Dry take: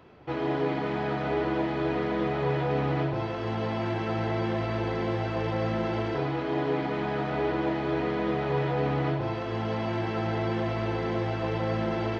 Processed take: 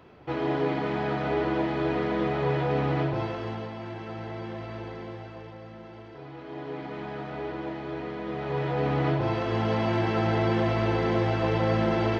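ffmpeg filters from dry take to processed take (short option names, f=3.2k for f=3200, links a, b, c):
-af "volume=21dB,afade=t=out:st=3.22:d=0.49:silence=0.354813,afade=t=out:st=4.79:d=0.82:silence=0.398107,afade=t=in:st=6.14:d=0.84:silence=0.334965,afade=t=in:st=8.25:d=1.11:silence=0.298538"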